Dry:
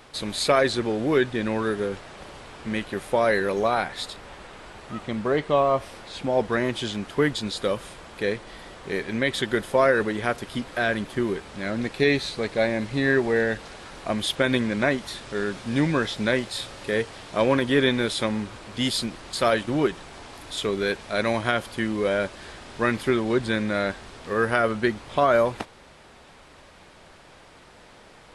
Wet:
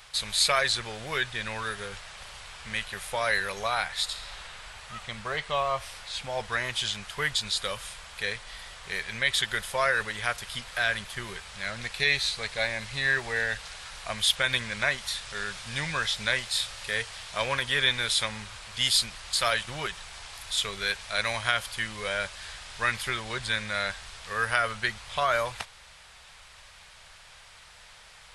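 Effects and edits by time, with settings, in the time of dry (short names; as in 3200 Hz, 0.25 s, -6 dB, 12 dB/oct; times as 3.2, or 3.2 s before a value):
4.04–4.44 reverb throw, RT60 2.5 s, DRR 2 dB
whole clip: passive tone stack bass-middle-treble 10-0-10; gain +5.5 dB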